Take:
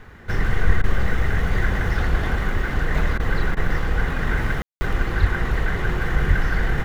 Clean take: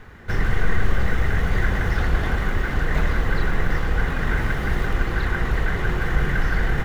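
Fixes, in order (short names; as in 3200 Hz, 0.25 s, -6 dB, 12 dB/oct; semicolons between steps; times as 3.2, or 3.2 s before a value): de-plosive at 0.66/5.2/6.27; room tone fill 4.62–4.81; interpolate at 0.82/3.18/3.55/4.69, 16 ms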